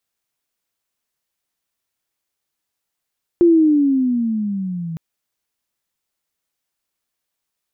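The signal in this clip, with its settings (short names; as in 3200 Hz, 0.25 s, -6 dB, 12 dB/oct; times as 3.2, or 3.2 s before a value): chirp logarithmic 350 Hz -> 160 Hz -7.5 dBFS -> -24 dBFS 1.56 s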